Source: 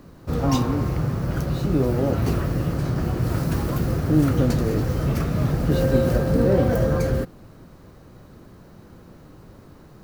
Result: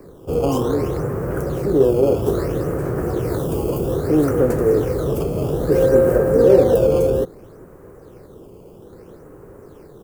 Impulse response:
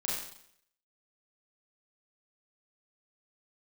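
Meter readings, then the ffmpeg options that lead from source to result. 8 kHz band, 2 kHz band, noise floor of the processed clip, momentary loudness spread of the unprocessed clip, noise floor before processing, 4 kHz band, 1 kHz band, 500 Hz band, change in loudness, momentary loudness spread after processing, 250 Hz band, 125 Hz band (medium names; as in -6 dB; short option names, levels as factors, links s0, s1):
+1.5 dB, -0.5 dB, -43 dBFS, 6 LU, -47 dBFS, no reading, +2.0 dB, +9.5 dB, +4.0 dB, 9 LU, +1.5 dB, -2.5 dB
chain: -filter_complex "[0:a]firequalizer=gain_entry='entry(250,0);entry(420,14);entry(630,4);entry(1600,3);entry(3900,-15);entry(8000,3)':delay=0.05:min_phase=1,acrossover=split=280|1000|3400[s0][s1][s2][s3];[s0]asoftclip=type=tanh:threshold=0.1[s4];[s2]acrusher=samples=13:mix=1:aa=0.000001:lfo=1:lforange=20.8:lforate=0.61[s5];[s4][s1][s5][s3]amix=inputs=4:normalize=0"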